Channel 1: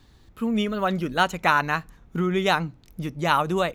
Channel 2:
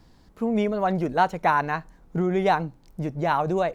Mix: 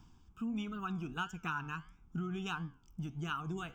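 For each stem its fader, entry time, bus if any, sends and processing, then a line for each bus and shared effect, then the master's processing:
-6.5 dB, 0.00 s, no send, reverb removal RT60 0.59 s
+2.5 dB, 0.00 s, no send, auto duck -9 dB, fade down 0.25 s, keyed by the first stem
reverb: none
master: flange 1.5 Hz, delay 9.7 ms, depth 5.7 ms, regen +85%; static phaser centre 2.8 kHz, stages 8; compression 2:1, threshold -38 dBFS, peak gain reduction 7 dB

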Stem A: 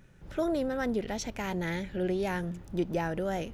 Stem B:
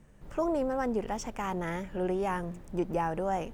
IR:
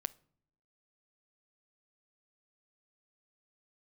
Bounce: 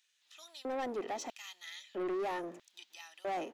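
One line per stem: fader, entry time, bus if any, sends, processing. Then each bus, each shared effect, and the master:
-7.5 dB, 0.00 s, no send, none
-3.5 dB, 1.8 ms, no send, elliptic band-pass 270–7000 Hz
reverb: none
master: LFO high-pass square 0.77 Hz 410–3600 Hz; saturation -32.5 dBFS, distortion -10 dB

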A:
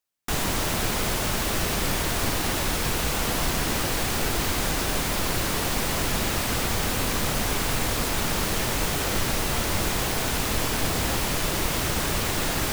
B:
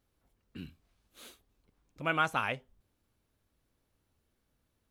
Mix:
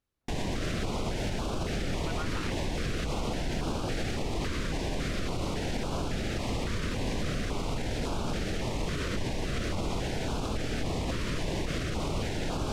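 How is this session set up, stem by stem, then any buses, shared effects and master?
-0.5 dB, 0.00 s, no send, low-pass 6.5 kHz 12 dB/octave; treble shelf 2.5 kHz -9 dB; step-sequenced notch 3.6 Hz 800–1900 Hz
-9.0 dB, 0.00 s, no send, none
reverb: none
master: peak limiter -22.5 dBFS, peak gain reduction 7 dB

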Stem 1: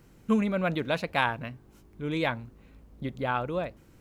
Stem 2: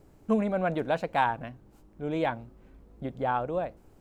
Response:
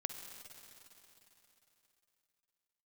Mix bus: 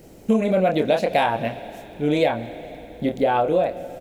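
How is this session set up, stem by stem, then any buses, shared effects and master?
+2.0 dB, 0.00 s, send -6 dB, FFT filter 140 Hz 0 dB, 210 Hz +5 dB, 730 Hz +11 dB, 1.1 kHz -13 dB, 1.9 kHz -2 dB, 3.4 kHz -4 dB
0.0 dB, 27 ms, no send, peaking EQ 550 Hz +10 dB 1.6 oct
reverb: on, RT60 3.5 s, pre-delay 45 ms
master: treble shelf 2.3 kHz +11.5 dB; compression 4:1, threshold -16 dBFS, peak gain reduction 8 dB

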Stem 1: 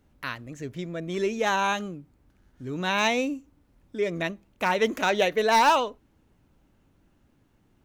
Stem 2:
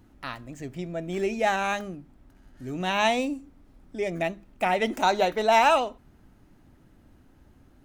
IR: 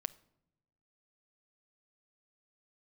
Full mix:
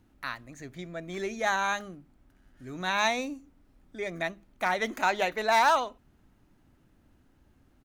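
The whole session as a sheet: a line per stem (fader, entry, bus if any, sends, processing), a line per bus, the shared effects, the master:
-4.5 dB, 0.00 s, no send, high-pass 1 kHz 24 dB/octave
-7.0 dB, 0.3 ms, no send, none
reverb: none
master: none

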